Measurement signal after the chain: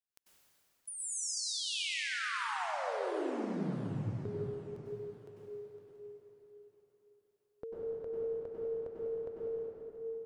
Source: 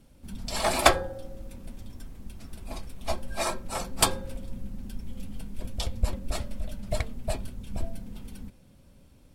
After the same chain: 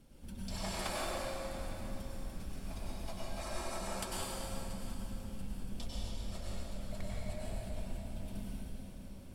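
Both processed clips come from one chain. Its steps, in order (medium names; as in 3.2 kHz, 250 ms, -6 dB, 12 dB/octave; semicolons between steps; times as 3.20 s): compression 4:1, threshold -40 dBFS; thinning echo 683 ms, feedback 40%, high-pass 320 Hz, level -16 dB; plate-style reverb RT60 3.3 s, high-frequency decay 0.8×, pre-delay 85 ms, DRR -7 dB; trim -4.5 dB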